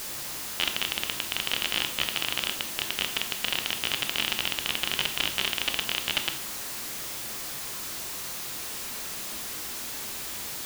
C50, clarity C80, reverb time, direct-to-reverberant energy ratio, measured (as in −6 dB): 10.5 dB, 14.0 dB, 0.60 s, 6.0 dB